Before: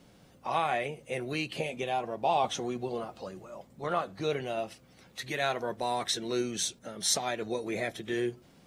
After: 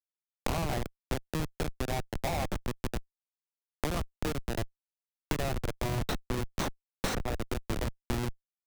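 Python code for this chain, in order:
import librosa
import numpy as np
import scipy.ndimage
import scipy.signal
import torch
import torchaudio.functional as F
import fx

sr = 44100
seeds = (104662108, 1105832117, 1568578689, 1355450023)

y = fx.schmitt(x, sr, flips_db=-26.5)
y = fx.band_squash(y, sr, depth_pct=100)
y = F.gain(torch.from_numpy(y), 3.0).numpy()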